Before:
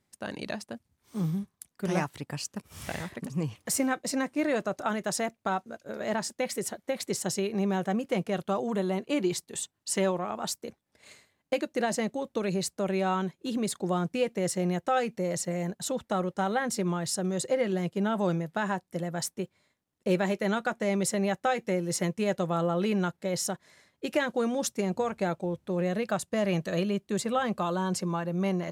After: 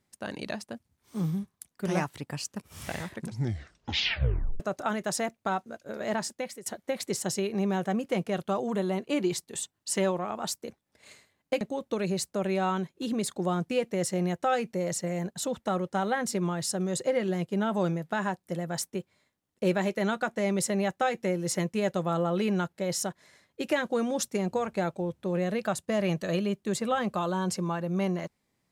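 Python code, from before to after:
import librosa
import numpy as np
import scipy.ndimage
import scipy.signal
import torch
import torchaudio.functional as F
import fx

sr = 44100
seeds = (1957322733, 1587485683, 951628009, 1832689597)

y = fx.edit(x, sr, fx.tape_stop(start_s=3.09, length_s=1.51),
    fx.fade_out_to(start_s=6.25, length_s=0.41, floor_db=-19.5),
    fx.cut(start_s=11.61, length_s=0.44), tone=tone)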